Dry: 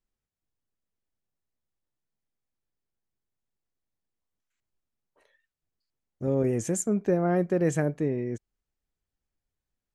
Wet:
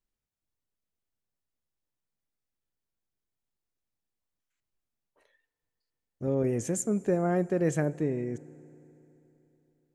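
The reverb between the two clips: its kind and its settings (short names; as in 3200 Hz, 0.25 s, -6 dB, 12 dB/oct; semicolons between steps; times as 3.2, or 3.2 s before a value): FDN reverb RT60 3.4 s, high-frequency decay 0.95×, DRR 19.5 dB; gain -2 dB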